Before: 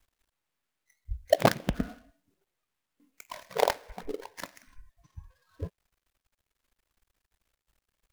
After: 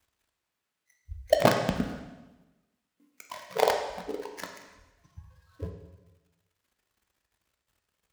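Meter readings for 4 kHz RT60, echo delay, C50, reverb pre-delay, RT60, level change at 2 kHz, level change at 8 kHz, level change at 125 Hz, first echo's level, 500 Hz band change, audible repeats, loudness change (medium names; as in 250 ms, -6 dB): 1.0 s, no echo, 6.0 dB, 5 ms, 1.1 s, +1.5 dB, +1.0 dB, +0.5 dB, no echo, +2.0 dB, no echo, +2.0 dB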